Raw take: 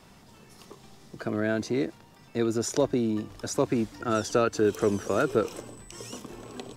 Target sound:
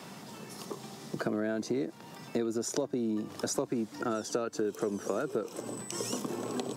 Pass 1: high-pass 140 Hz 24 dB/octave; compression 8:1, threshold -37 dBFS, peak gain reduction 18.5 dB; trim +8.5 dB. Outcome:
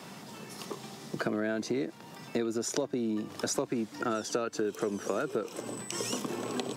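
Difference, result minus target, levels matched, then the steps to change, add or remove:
2 kHz band +3.0 dB
add after compression: dynamic bell 2.5 kHz, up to -6 dB, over -60 dBFS, Q 0.79

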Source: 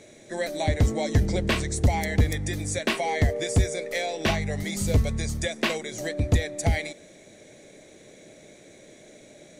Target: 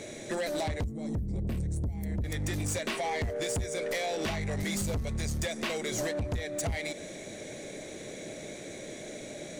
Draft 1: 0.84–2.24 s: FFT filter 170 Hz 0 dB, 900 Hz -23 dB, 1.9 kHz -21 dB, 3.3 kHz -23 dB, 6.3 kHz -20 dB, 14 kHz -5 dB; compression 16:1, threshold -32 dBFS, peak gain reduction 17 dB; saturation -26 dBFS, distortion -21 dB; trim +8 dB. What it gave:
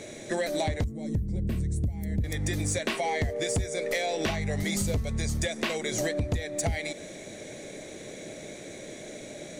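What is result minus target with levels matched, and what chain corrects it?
saturation: distortion -11 dB
0.84–2.24 s: FFT filter 170 Hz 0 dB, 900 Hz -23 dB, 1.9 kHz -21 dB, 3.3 kHz -23 dB, 6.3 kHz -20 dB, 14 kHz -5 dB; compression 16:1, threshold -32 dBFS, peak gain reduction 17 dB; saturation -35.5 dBFS, distortion -11 dB; trim +8 dB

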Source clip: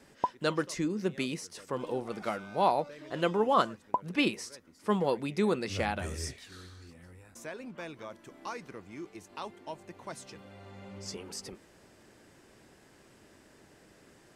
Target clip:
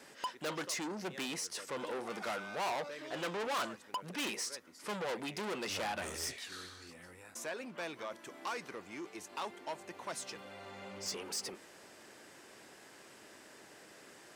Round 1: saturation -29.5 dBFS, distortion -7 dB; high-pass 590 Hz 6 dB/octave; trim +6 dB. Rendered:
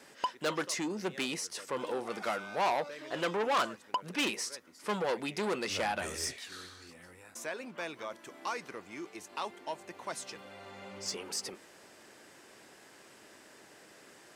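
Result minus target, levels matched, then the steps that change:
saturation: distortion -5 dB
change: saturation -37.5 dBFS, distortion -2 dB

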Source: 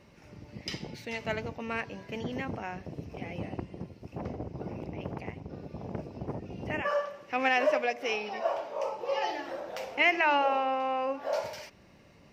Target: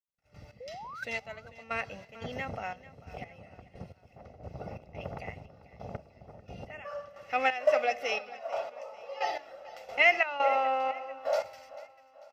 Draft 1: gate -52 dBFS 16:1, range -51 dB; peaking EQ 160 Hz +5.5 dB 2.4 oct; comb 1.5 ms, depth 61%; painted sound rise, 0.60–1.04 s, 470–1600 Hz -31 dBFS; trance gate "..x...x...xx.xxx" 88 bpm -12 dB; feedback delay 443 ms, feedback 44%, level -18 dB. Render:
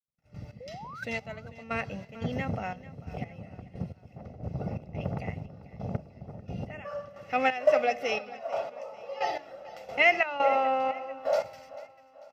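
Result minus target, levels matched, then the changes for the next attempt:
125 Hz band +9.5 dB
change: peaking EQ 160 Hz -6 dB 2.4 oct

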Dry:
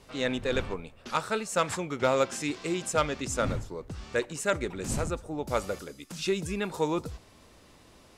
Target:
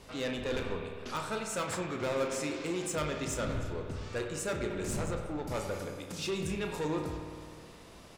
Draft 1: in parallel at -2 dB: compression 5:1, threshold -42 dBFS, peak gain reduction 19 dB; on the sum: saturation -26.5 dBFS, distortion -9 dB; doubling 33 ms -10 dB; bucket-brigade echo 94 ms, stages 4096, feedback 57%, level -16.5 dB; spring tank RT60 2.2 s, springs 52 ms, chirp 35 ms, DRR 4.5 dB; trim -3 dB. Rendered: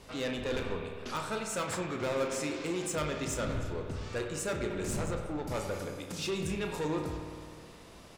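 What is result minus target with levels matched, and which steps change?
compression: peak gain reduction -6.5 dB
change: compression 5:1, threshold -50 dBFS, peak gain reduction 25.5 dB

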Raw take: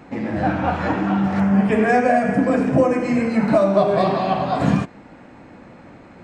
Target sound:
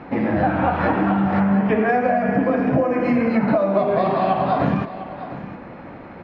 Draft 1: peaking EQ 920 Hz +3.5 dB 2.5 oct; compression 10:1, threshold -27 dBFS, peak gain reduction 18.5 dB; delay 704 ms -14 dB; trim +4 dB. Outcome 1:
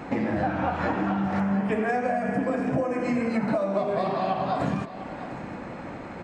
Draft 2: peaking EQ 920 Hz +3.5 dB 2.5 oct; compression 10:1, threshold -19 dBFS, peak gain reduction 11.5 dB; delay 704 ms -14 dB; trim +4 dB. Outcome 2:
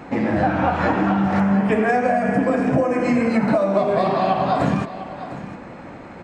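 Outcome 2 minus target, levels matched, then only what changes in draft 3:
4 kHz band +4.0 dB
add first: Bessel low-pass 3.1 kHz, order 6

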